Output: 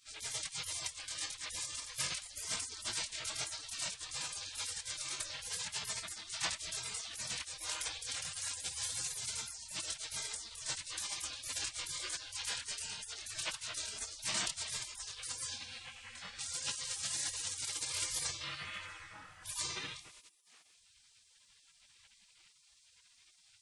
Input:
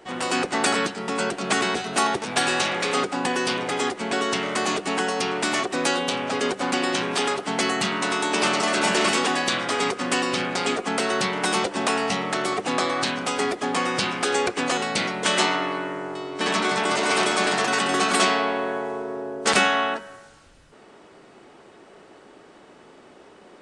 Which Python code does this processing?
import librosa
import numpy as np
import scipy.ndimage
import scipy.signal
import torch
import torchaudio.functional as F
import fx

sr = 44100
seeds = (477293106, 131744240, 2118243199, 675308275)

y = fx.chorus_voices(x, sr, voices=4, hz=1.4, base_ms=24, depth_ms=3.0, mix_pct=45)
y = fx.spec_gate(y, sr, threshold_db=-25, keep='weak')
y = y * 10.0 ** (3.5 / 20.0)